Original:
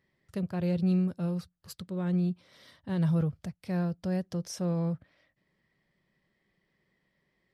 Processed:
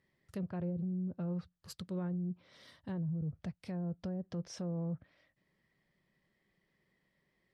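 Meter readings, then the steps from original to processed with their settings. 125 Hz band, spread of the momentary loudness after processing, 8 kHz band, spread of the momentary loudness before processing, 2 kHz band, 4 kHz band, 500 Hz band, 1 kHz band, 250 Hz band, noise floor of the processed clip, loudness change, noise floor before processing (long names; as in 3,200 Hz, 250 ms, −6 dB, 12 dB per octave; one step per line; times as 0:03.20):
−8.0 dB, 10 LU, −8.5 dB, 14 LU, −10.0 dB, −6.5 dB, −8.5 dB, −9.0 dB, −8.0 dB, −80 dBFS, −8.5 dB, −77 dBFS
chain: treble cut that deepens with the level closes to 320 Hz, closed at −23.5 dBFS
brickwall limiter −29.5 dBFS, peak gain reduction 9 dB
level −2.5 dB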